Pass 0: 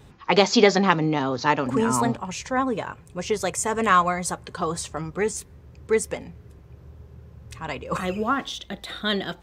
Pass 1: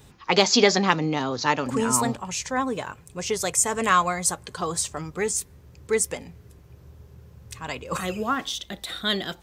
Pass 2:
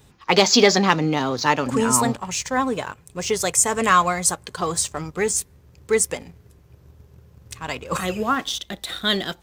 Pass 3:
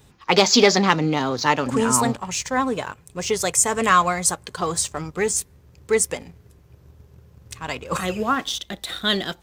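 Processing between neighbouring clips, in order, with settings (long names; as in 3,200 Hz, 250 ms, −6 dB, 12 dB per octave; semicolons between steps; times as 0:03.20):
high-shelf EQ 4,200 Hz +11.5 dB; level −2.5 dB
leveller curve on the samples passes 1
highs frequency-modulated by the lows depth 0.1 ms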